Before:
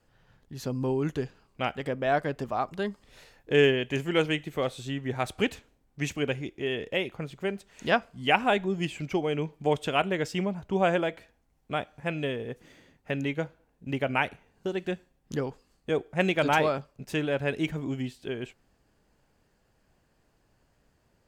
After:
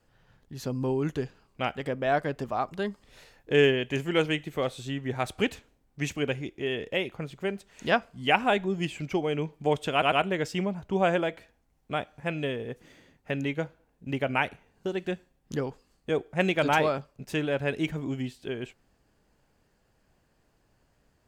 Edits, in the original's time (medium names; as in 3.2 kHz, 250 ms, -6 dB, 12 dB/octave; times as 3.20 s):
9.92 s: stutter 0.10 s, 3 plays